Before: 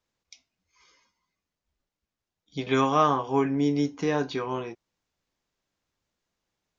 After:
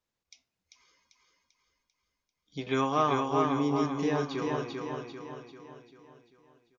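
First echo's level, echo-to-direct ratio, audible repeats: −3.5 dB, −2.5 dB, 6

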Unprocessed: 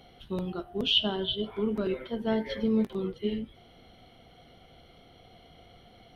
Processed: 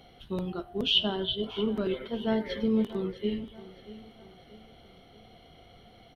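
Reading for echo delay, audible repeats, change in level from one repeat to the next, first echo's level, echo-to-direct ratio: 633 ms, 3, −7.0 dB, −17.0 dB, −16.0 dB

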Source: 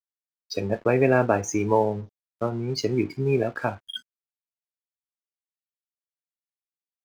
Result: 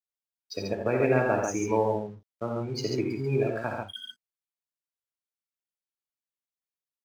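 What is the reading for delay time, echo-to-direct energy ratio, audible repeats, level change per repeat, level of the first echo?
52 ms, −0.5 dB, 3, repeats not evenly spaced, −12.0 dB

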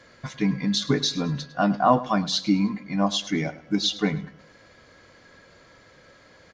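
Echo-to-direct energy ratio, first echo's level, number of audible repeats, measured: −16.5 dB, −17.0 dB, 3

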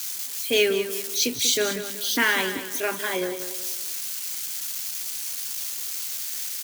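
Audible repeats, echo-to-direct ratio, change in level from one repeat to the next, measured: 3, −10.0 dB, −8.5 dB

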